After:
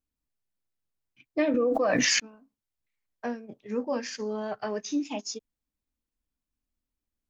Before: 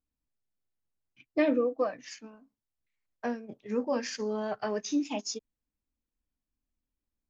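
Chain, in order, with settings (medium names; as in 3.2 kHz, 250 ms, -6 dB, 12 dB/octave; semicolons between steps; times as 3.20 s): 1.54–2.20 s: level flattener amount 100%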